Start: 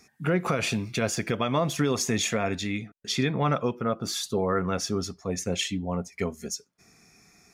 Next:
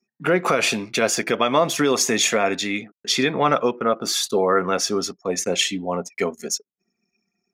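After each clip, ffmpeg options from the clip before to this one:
ffmpeg -i in.wav -af "anlmdn=0.0158,highpass=300,volume=8.5dB" out.wav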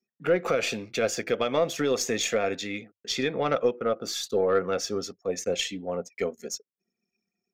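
ffmpeg -i in.wav -af "aeval=exprs='0.562*(cos(1*acos(clip(val(0)/0.562,-1,1)))-cos(1*PI/2))+0.0447*(cos(3*acos(clip(val(0)/0.562,-1,1)))-cos(3*PI/2))+0.0126*(cos(4*acos(clip(val(0)/0.562,-1,1)))-cos(4*PI/2))':channel_layout=same,equalizer=frequency=100:width_type=o:width=0.33:gain=6,equalizer=frequency=500:width_type=o:width=0.33:gain=8,equalizer=frequency=1000:width_type=o:width=0.33:gain=-8,equalizer=frequency=10000:width_type=o:width=0.33:gain=-11,volume=-6.5dB" out.wav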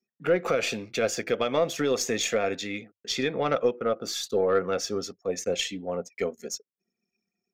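ffmpeg -i in.wav -af anull out.wav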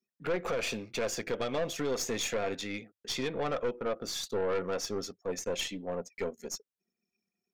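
ffmpeg -i in.wav -af "aeval=exprs='(tanh(15.8*val(0)+0.4)-tanh(0.4))/15.8':channel_layout=same,volume=-2.5dB" out.wav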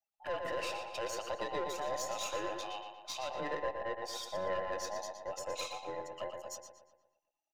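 ffmpeg -i in.wav -filter_complex "[0:a]afftfilt=real='real(if(between(b,1,1008),(2*floor((b-1)/48)+1)*48-b,b),0)':imag='imag(if(between(b,1,1008),(2*floor((b-1)/48)+1)*48-b,b),0)*if(between(b,1,1008),-1,1)':win_size=2048:overlap=0.75,asplit=2[link_01][link_02];[link_02]adelay=118,lowpass=frequency=4100:poles=1,volume=-5dB,asplit=2[link_03][link_04];[link_04]adelay=118,lowpass=frequency=4100:poles=1,volume=0.52,asplit=2[link_05][link_06];[link_06]adelay=118,lowpass=frequency=4100:poles=1,volume=0.52,asplit=2[link_07][link_08];[link_08]adelay=118,lowpass=frequency=4100:poles=1,volume=0.52,asplit=2[link_09][link_10];[link_10]adelay=118,lowpass=frequency=4100:poles=1,volume=0.52,asplit=2[link_11][link_12];[link_12]adelay=118,lowpass=frequency=4100:poles=1,volume=0.52,asplit=2[link_13][link_14];[link_14]adelay=118,lowpass=frequency=4100:poles=1,volume=0.52[link_15];[link_03][link_05][link_07][link_09][link_11][link_13][link_15]amix=inputs=7:normalize=0[link_16];[link_01][link_16]amix=inputs=2:normalize=0,volume=-7dB" out.wav

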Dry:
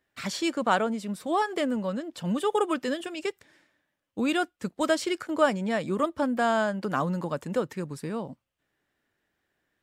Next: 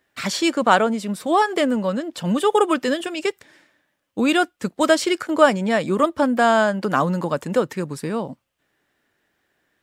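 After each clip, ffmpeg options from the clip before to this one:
ffmpeg -i in.wav -af "lowshelf=frequency=130:gain=-6,volume=8.5dB" out.wav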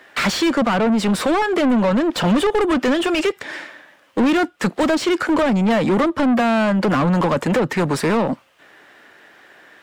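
ffmpeg -i in.wav -filter_complex "[0:a]acrossover=split=280[link_01][link_02];[link_02]acompressor=threshold=-30dB:ratio=10[link_03];[link_01][link_03]amix=inputs=2:normalize=0,asplit=2[link_04][link_05];[link_05]highpass=frequency=720:poles=1,volume=27dB,asoftclip=type=tanh:threshold=-14.5dB[link_06];[link_04][link_06]amix=inputs=2:normalize=0,lowpass=frequency=2100:poles=1,volume=-6dB,volume=5dB" out.wav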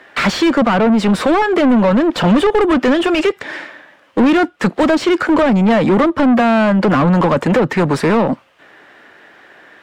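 ffmpeg -i in.wav -af "aemphasis=mode=reproduction:type=cd,volume=4.5dB" out.wav

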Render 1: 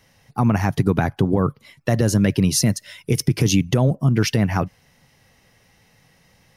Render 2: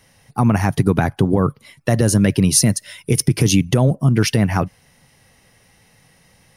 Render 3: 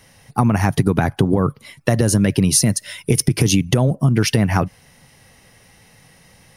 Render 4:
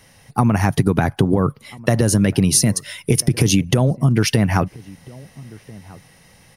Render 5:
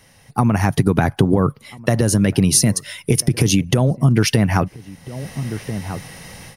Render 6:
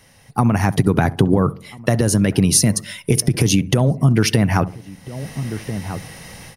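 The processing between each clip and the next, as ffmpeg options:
ffmpeg -i in.wav -af "equalizer=frequency=9500:width_type=o:width=0.25:gain=10,volume=2.5dB" out.wav
ffmpeg -i in.wav -af "acompressor=threshold=-16dB:ratio=4,volume=4dB" out.wav
ffmpeg -i in.wav -filter_complex "[0:a]asplit=2[link_01][link_02];[link_02]adelay=1341,volume=-22dB,highshelf=frequency=4000:gain=-30.2[link_03];[link_01][link_03]amix=inputs=2:normalize=0" out.wav
ffmpeg -i in.wav -af "dynaudnorm=framelen=240:gausssize=3:maxgain=13.5dB,volume=-1dB" out.wav
ffmpeg -i in.wav -filter_complex "[0:a]asplit=2[link_01][link_02];[link_02]adelay=67,lowpass=frequency=850:poles=1,volume=-16dB,asplit=2[link_03][link_04];[link_04]adelay=67,lowpass=frequency=850:poles=1,volume=0.47,asplit=2[link_05][link_06];[link_06]adelay=67,lowpass=frequency=850:poles=1,volume=0.47,asplit=2[link_07][link_08];[link_08]adelay=67,lowpass=frequency=850:poles=1,volume=0.47[link_09];[link_01][link_03][link_05][link_07][link_09]amix=inputs=5:normalize=0" out.wav

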